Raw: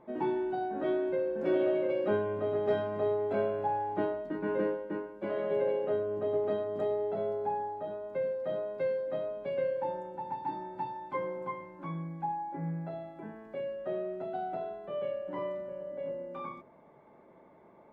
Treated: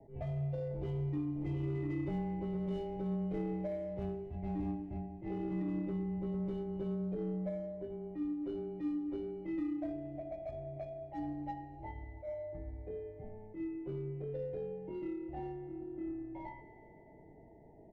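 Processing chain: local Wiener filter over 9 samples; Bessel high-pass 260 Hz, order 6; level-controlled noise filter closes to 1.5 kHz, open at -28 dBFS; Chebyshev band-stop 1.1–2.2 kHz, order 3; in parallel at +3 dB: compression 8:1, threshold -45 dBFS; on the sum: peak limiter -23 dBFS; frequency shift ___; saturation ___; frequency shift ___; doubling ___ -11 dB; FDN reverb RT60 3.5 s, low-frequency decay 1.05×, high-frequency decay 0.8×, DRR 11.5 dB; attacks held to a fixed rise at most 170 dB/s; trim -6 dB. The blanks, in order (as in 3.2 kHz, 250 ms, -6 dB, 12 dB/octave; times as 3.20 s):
-69 Hz, -22.5 dBFS, -160 Hz, 21 ms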